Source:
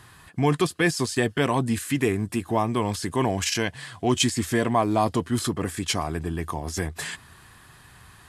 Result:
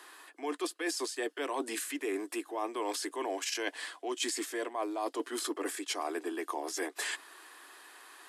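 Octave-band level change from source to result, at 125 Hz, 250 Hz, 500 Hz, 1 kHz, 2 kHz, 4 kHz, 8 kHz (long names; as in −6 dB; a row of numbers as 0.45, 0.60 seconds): below −40 dB, −13.0 dB, −9.5 dB, −10.5 dB, −8.5 dB, −8.5 dB, −7.0 dB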